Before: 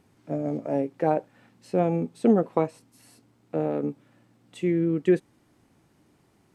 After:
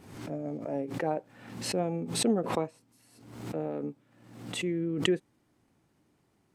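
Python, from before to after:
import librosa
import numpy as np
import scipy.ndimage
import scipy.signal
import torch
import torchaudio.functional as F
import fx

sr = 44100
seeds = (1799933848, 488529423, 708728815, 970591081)

y = fx.pre_swell(x, sr, db_per_s=65.0)
y = F.gain(torch.from_numpy(y), -7.5).numpy()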